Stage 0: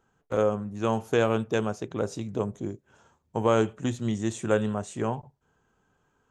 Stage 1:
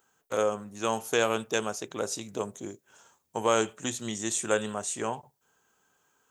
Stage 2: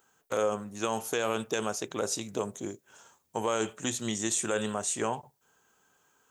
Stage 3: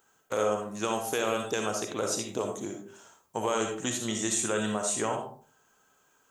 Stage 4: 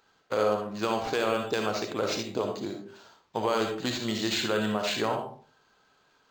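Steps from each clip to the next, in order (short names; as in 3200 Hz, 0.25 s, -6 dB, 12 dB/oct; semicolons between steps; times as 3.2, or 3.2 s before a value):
RIAA curve recording
limiter -19.5 dBFS, peak gain reduction 8.5 dB; gain +2 dB
reverb RT60 0.45 s, pre-delay 20 ms, DRR 3 dB
decimation joined by straight lines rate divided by 4×; gain +2 dB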